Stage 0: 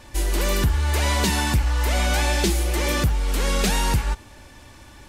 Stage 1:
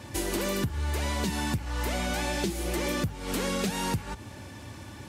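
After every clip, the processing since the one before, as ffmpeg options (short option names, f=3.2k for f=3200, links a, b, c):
-af "highpass=f=90:w=0.5412,highpass=f=90:w=1.3066,lowshelf=f=310:g=9.5,acompressor=threshold=-26dB:ratio=10"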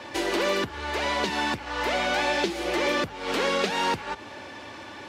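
-filter_complex "[0:a]acrossover=split=320 5100:gain=0.1 1 0.1[a][b][c];[a][b][c]amix=inputs=3:normalize=0,volume=8dB"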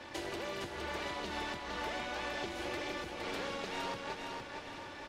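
-af "acompressor=threshold=-29dB:ratio=6,tremolo=f=260:d=0.75,aecho=1:1:462|924|1386|1848|2310:0.596|0.262|0.115|0.0507|0.0223,volume=-5dB"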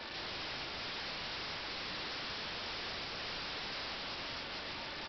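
-af "crystalizer=i=3.5:c=0,aresample=11025,aeval=exprs='(mod(84.1*val(0)+1,2)-1)/84.1':c=same,aresample=44100,volume=2dB"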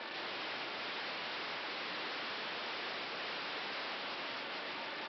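-af "highpass=260,lowpass=3.4k,volume=2.5dB"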